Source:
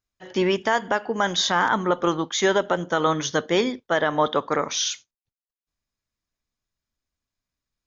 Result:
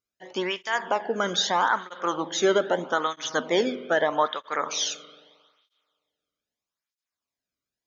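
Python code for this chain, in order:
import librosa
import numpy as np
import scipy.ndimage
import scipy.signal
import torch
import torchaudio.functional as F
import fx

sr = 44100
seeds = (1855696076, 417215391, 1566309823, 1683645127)

y = fx.peak_eq(x, sr, hz=250.0, db=14.5, octaves=0.27, at=(2.78, 3.5))
y = fx.rev_spring(y, sr, rt60_s=1.8, pass_ms=(44,), chirp_ms=35, drr_db=13.5)
y = fx.flanger_cancel(y, sr, hz=0.79, depth_ms=1.2)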